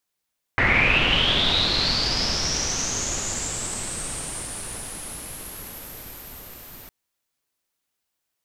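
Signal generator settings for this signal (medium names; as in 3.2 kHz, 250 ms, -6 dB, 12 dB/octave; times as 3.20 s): swept filtered noise pink, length 6.31 s lowpass, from 1.9 kHz, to 14 kHz, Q 9.3, linear, gain ramp -24 dB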